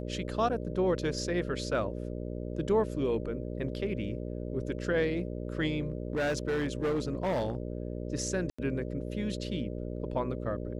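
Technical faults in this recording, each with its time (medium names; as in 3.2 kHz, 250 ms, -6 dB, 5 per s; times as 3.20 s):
buzz 60 Hz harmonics 10 -37 dBFS
5.82–7.55 s: clipped -26 dBFS
8.50–8.59 s: dropout 85 ms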